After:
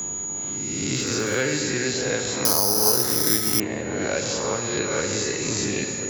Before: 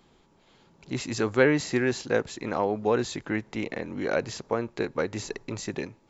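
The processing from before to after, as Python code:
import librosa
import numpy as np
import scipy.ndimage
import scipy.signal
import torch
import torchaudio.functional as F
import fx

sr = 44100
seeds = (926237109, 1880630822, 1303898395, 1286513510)

p1 = fx.spec_swells(x, sr, rise_s=0.91)
p2 = scipy.signal.sosfilt(scipy.signal.butter(2, 63.0, 'highpass', fs=sr, output='sos'), p1)
p3 = fx.low_shelf(p2, sr, hz=130.0, db=11.5)
p4 = fx.rider(p3, sr, range_db=10, speed_s=0.5)
p5 = p3 + F.gain(torch.from_numpy(p4), 2.0).numpy()
p6 = fx.dmg_crackle(p5, sr, seeds[0], per_s=140.0, level_db=-26.0, at=(0.95, 1.41), fade=0.02)
p7 = p6 + fx.echo_alternate(p6, sr, ms=345, hz=1400.0, feedback_pct=73, wet_db=-14.0, dry=0)
p8 = fx.rev_gated(p7, sr, seeds[1], gate_ms=420, shape='falling', drr_db=4.0)
p9 = p8 + 10.0 ** (-31.0 / 20.0) * np.sin(2.0 * np.pi * 6800.0 * np.arange(len(p8)) / sr)
p10 = fx.resample_bad(p9, sr, factor=8, down='none', up='zero_stuff', at=(2.45, 3.6))
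p11 = fx.band_squash(p10, sr, depth_pct=70)
y = F.gain(torch.from_numpy(p11), -12.0).numpy()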